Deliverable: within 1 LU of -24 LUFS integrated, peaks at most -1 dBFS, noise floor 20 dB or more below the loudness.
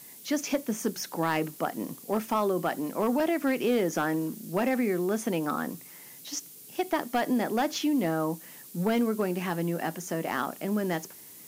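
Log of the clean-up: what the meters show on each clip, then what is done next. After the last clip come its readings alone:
clipped samples 0.4%; clipping level -18.0 dBFS; noise floor -48 dBFS; noise floor target -50 dBFS; loudness -29.5 LUFS; peak level -18.0 dBFS; loudness target -24.0 LUFS
-> clip repair -18 dBFS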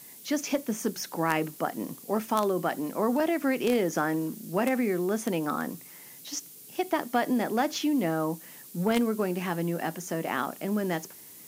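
clipped samples 0.0%; noise floor -48 dBFS; noise floor target -49 dBFS
-> noise reduction 6 dB, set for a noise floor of -48 dBFS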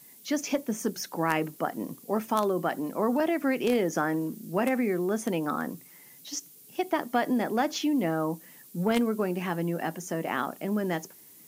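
noise floor -53 dBFS; loudness -29.0 LUFS; peak level -9.0 dBFS; loudness target -24.0 LUFS
-> trim +5 dB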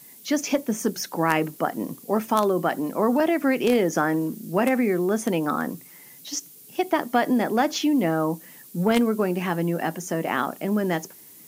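loudness -24.0 LUFS; peak level -4.0 dBFS; noise floor -48 dBFS

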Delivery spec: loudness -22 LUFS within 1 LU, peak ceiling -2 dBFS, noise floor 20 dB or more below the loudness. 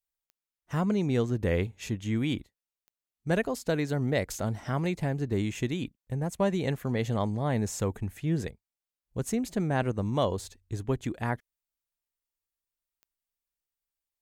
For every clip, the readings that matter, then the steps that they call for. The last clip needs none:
clicks found 5; loudness -30.5 LUFS; peak level -15.0 dBFS; loudness target -22.0 LUFS
-> de-click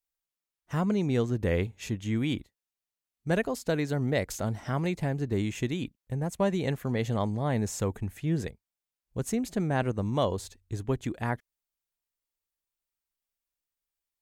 clicks found 0; loudness -30.5 LUFS; peak level -15.0 dBFS; loudness target -22.0 LUFS
-> trim +8.5 dB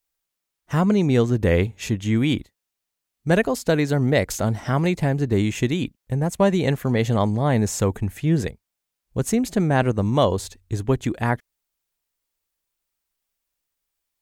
loudness -22.0 LUFS; peak level -6.5 dBFS; noise floor -83 dBFS

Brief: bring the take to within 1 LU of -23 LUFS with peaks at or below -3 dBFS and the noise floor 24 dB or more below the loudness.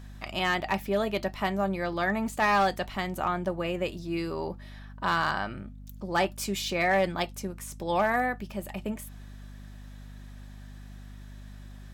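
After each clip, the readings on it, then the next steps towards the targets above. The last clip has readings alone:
clipped samples 0.3%; clipping level -17.5 dBFS; hum 50 Hz; highest harmonic 250 Hz; hum level -42 dBFS; loudness -29.0 LUFS; peak level -17.5 dBFS; loudness target -23.0 LUFS
-> clip repair -17.5 dBFS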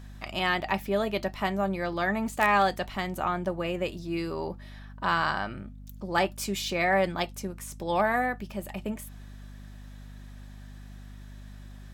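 clipped samples 0.0%; hum 50 Hz; highest harmonic 250 Hz; hum level -42 dBFS
-> de-hum 50 Hz, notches 5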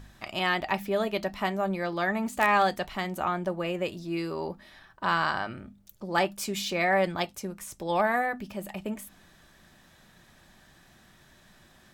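hum not found; loudness -29.0 LUFS; peak level -9.5 dBFS; loudness target -23.0 LUFS
-> trim +6 dB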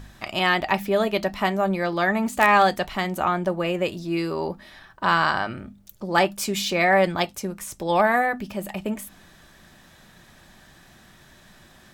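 loudness -23.0 LUFS; peak level -3.5 dBFS; noise floor -52 dBFS

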